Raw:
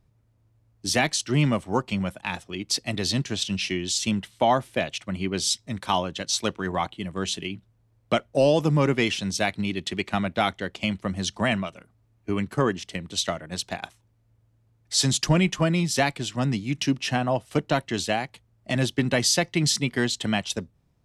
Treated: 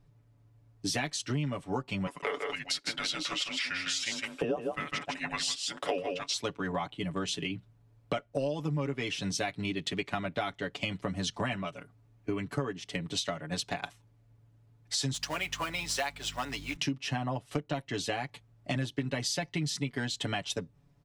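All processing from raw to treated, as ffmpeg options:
-filter_complex "[0:a]asettb=1/sr,asplit=3[a][b][c];[a]atrim=end=2.074[d];[b]atrim=start=2.07:end=6.34,asetpts=PTS-STARTPTS,afade=t=in:d=0.004:c=qsin,afade=t=out:st=4.266:d=0.004:c=qsin,lowshelf=f=640:t=q:w=3:g=-14,afreqshift=-450,aecho=1:1:155:0.501,atrim=end_sample=188307[e];[c]atrim=start=6.336[f];[d][e]acrossfade=d=0.004:c1=hsin:c2=qsin[g];[g][f]acrossfade=d=0.004:c1=qsin:c2=hsin,asettb=1/sr,asplit=3[h][i][j];[h]atrim=end=15.144[k];[i]atrim=start=15.14:end=16.76,asetpts=PTS-STARTPTS,afade=t=in:d=0.004:c=qsin,afade=t=out:st=1.616:d=0.004:c=qsin,highpass=660,aeval=exprs='val(0)+0.00631*(sin(2*PI*50*n/s)+sin(2*PI*2*50*n/s)/2+sin(2*PI*3*50*n/s)/3+sin(2*PI*4*50*n/s)/4+sin(2*PI*5*50*n/s)/5)':c=same,acrusher=bits=3:mode=log:mix=0:aa=0.000001[l];[j]atrim=start=16.756[m];[k][l]acrossfade=d=0.004:c1=hsin:c2=qsin[n];[n][m]acrossfade=d=0.004:c1=qsin:c2=hsin,highshelf=f=6.6k:g=-6,aecho=1:1:7:0.77,acompressor=threshold=-30dB:ratio=6"

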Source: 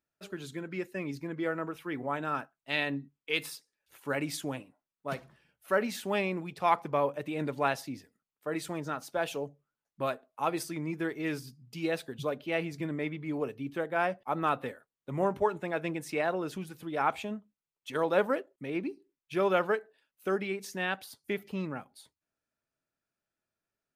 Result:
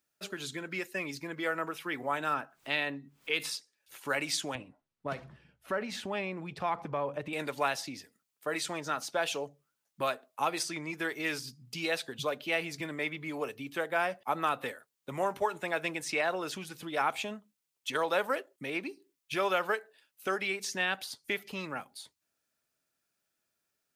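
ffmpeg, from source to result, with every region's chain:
-filter_complex "[0:a]asettb=1/sr,asplit=3[a][b][c];[a]atrim=end=2.344[d];[b]atrim=start=2.34:end=3.4,asetpts=PTS-STARTPTS,afade=t=in:d=0.004:c=qsin,afade=t=out:st=1.056:d=0.004:c=qsin,acompressor=mode=upward:threshold=-36dB:ratio=2.5:attack=3.2:release=140:knee=2.83:detection=peak,highshelf=f=3.2k:g=-11.5[e];[c]atrim=start=3.396[f];[d][e]acrossfade=d=0.004:c1=hsin:c2=qsin[g];[g][f]acrossfade=d=0.004:c1=qsin:c2=hsin,asettb=1/sr,asplit=3[h][i][j];[h]atrim=end=4.554[k];[i]atrim=start=4.55:end=7.33,asetpts=PTS-STARTPTS,afade=t=in:d=0.004:c=qsin,afade=t=out:st=2.776:d=0.004:c=qsin,aemphasis=mode=reproduction:type=riaa,acompressor=threshold=-31dB:ratio=2.5:attack=3.2:release=140:knee=1:detection=peak[l];[j]atrim=start=7.326[m];[k][l]acrossfade=d=0.004:c1=hsin:c2=qsin[n];[n][m]acrossfade=d=0.004:c1=qsin:c2=hsin,highshelf=f=2.6k:g=9,acrossover=split=520|7900[o][p][q];[o]acompressor=threshold=-43dB:ratio=4[r];[p]acompressor=threshold=-29dB:ratio=4[s];[q]acompressor=threshold=-58dB:ratio=4[t];[r][s][t]amix=inputs=3:normalize=0,lowshelf=f=83:g=-7.5,volume=2.5dB"

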